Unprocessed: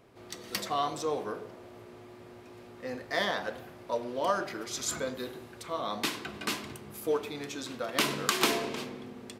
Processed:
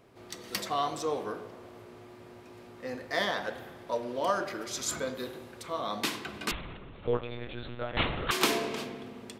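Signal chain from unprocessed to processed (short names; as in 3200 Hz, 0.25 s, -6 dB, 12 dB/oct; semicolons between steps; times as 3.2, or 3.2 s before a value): spring tank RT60 1.9 s, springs 57 ms, chirp 80 ms, DRR 14 dB; 6.51–8.31 monotone LPC vocoder at 8 kHz 120 Hz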